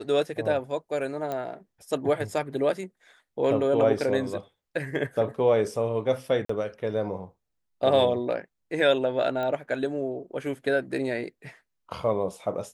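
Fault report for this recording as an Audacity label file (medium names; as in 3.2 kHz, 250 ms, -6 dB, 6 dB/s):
1.320000	1.320000	pop -19 dBFS
6.450000	6.490000	dropout 44 ms
9.430000	9.430000	pop -20 dBFS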